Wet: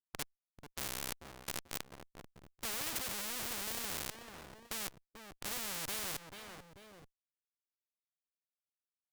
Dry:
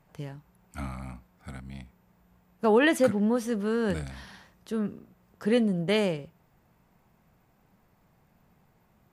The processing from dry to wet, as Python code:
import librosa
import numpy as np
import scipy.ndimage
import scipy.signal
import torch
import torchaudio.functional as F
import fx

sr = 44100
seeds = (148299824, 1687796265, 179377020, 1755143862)

p1 = fx.schmitt(x, sr, flips_db=-33.0)
p2 = fx.rider(p1, sr, range_db=10, speed_s=0.5)
p3 = 10.0 ** (-30.0 / 20.0) * np.tanh(p2 / 10.0 ** (-30.0 / 20.0))
p4 = p3 + fx.echo_feedback(p3, sr, ms=439, feedback_pct=33, wet_db=-23.5, dry=0)
p5 = fx.spectral_comp(p4, sr, ratio=4.0)
y = F.gain(torch.from_numpy(p5), 11.0).numpy()